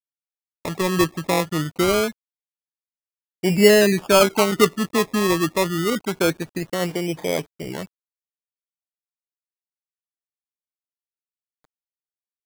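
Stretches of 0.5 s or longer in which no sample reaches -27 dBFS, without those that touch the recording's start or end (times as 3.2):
2.1–3.44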